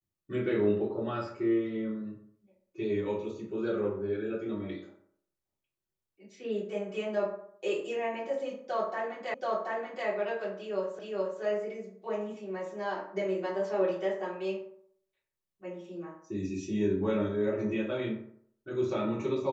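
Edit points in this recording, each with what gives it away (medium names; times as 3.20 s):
9.34 s: repeat of the last 0.73 s
10.99 s: repeat of the last 0.42 s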